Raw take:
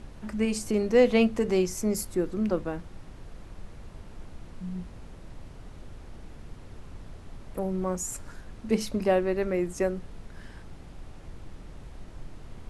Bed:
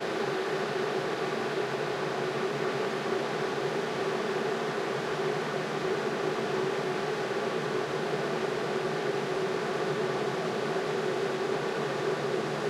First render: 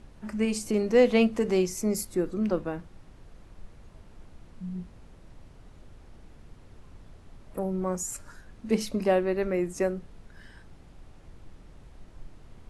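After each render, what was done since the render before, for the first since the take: noise print and reduce 6 dB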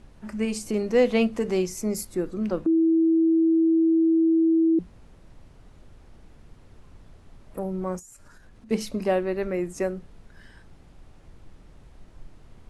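2.66–4.79 bleep 326 Hz -16.5 dBFS; 7.99–8.71 compressor 10:1, threshold -45 dBFS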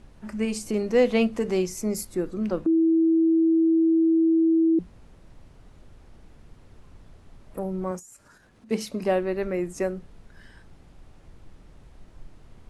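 7.91–9.03 HPF 150 Hz 6 dB/oct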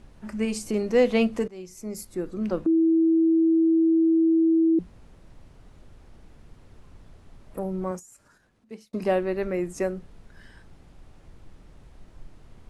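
1.48–2.54 fade in, from -23.5 dB; 7.86–8.93 fade out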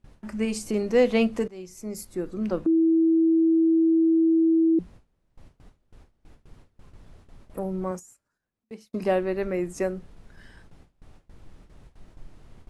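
gate with hold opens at -39 dBFS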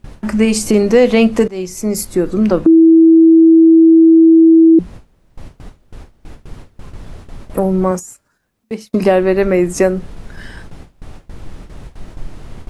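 in parallel at +1 dB: compressor, threshold -30 dBFS, peak gain reduction 14.5 dB; on the sum: maximiser +11 dB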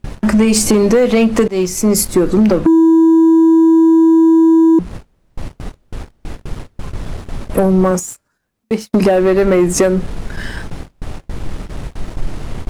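compressor 16:1, threshold -12 dBFS, peak gain reduction 8 dB; sample leveller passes 2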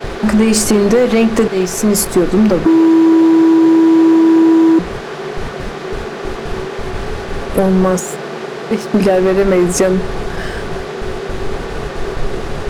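add bed +6 dB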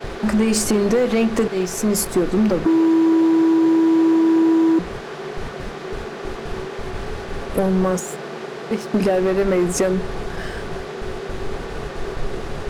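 gain -6.5 dB

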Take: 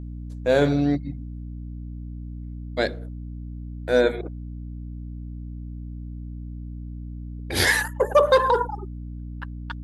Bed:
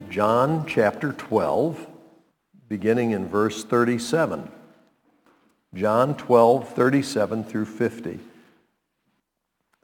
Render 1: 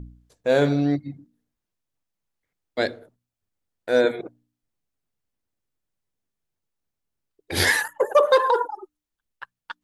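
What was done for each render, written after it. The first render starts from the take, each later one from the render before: de-hum 60 Hz, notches 5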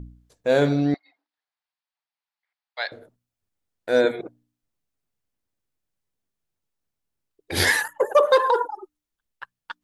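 0.94–2.92 elliptic band-pass 770–4700 Hz, stop band 70 dB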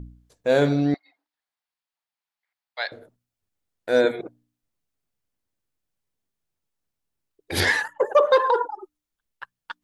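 7.6–8.8 air absorption 87 m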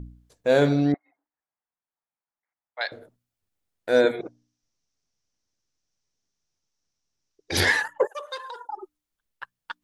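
0.92–2.81 Gaussian blur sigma 4.6 samples; 4.21–7.57 synth low-pass 5800 Hz, resonance Q 5.9; 8.07–8.69 differentiator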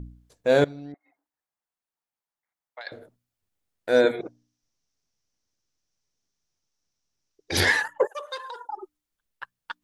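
0.64–2.87 compressor 20:1, threshold -35 dBFS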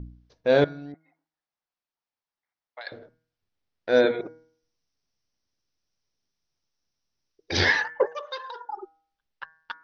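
steep low-pass 5900 Hz 72 dB/oct; de-hum 159.6 Hz, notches 14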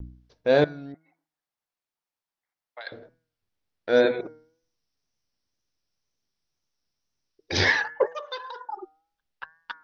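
vibrato 2 Hz 51 cents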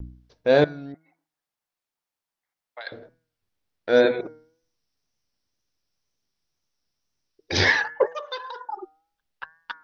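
gain +2 dB

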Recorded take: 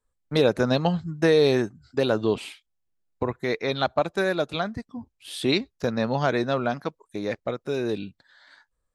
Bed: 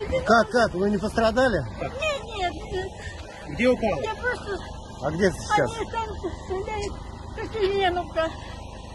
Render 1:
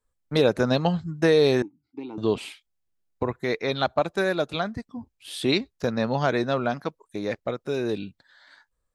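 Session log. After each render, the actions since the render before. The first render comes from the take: 1.62–2.18 vowel filter u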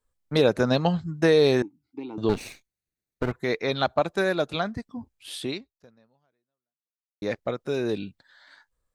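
2.29–3.32 minimum comb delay 0.48 ms; 5.34–7.22 fade out exponential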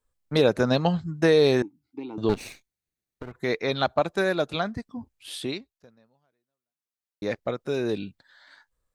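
2.34–3.35 compressor, threshold -34 dBFS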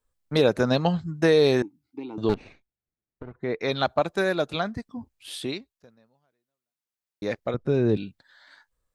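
2.34–3.61 tape spacing loss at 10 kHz 37 dB; 7.54–7.97 RIAA curve playback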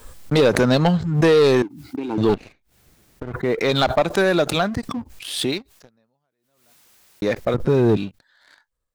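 sample leveller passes 2; backwards sustainer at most 64 dB/s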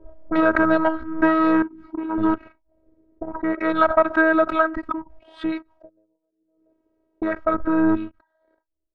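robotiser 320 Hz; envelope low-pass 440–1400 Hz up, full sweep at -25 dBFS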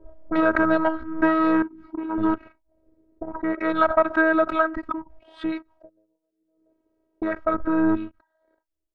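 gain -2 dB

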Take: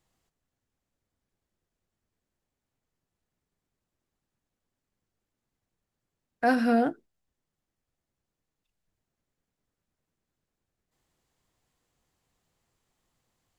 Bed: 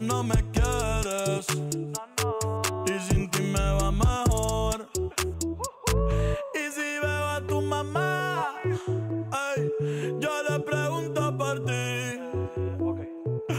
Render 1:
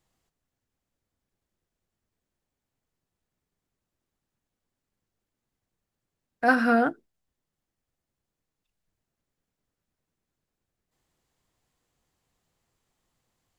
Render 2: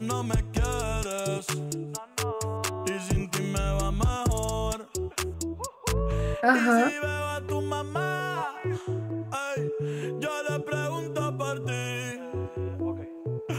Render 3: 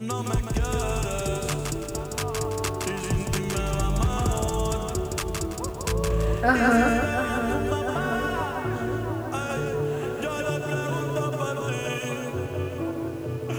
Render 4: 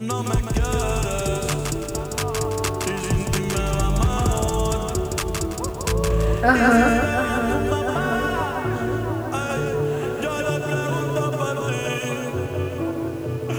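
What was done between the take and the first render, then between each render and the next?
6.48–6.89 bell 1300 Hz +11 dB 0.94 oct
add bed -2.5 dB
on a send: darkening echo 0.691 s, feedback 71%, low-pass 2000 Hz, level -8 dB; on the sum: lo-fi delay 0.166 s, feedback 35%, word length 8-bit, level -3.5 dB
gain +4 dB

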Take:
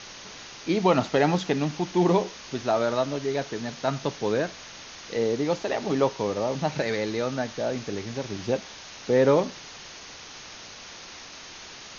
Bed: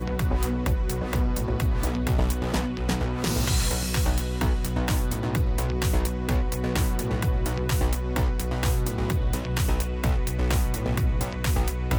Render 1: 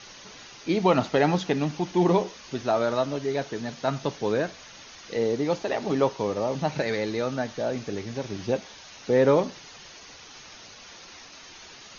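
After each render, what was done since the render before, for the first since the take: denoiser 7 dB, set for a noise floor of -44 dBFS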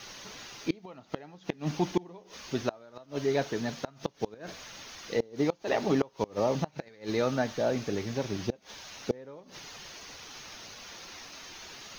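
requantised 10-bit, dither none; flipped gate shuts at -15 dBFS, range -27 dB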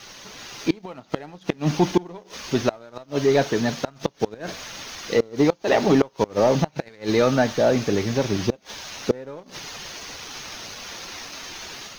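sample leveller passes 1; AGC gain up to 6.5 dB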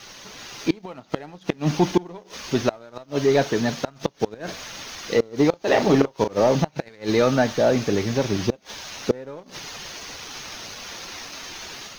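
5.5–6.42 doubler 36 ms -8 dB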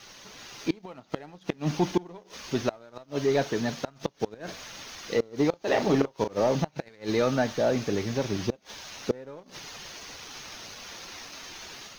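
gain -6 dB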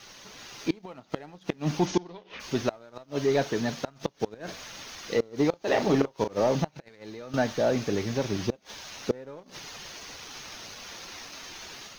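1.86–2.39 synth low-pass 7300 Hz -> 2400 Hz, resonance Q 2.6; 6.7–7.34 compressor, threshold -39 dBFS

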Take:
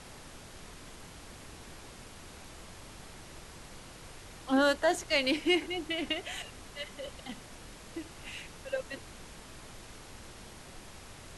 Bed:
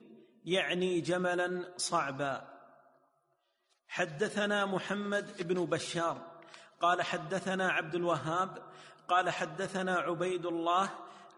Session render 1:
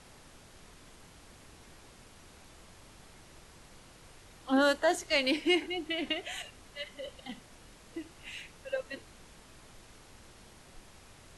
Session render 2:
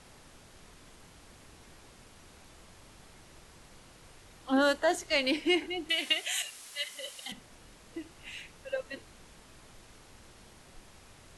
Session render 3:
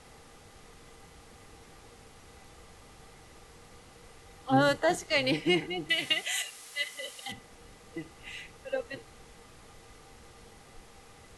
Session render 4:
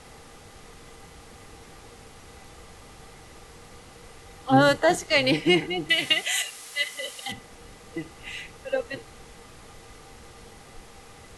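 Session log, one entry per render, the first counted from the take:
noise print and reduce 6 dB
5.89–7.32 tilt +4.5 dB/oct
octaver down 1 oct, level -4 dB; small resonant body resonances 470/790/1200/2000 Hz, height 11 dB, ringing for 85 ms
gain +6 dB

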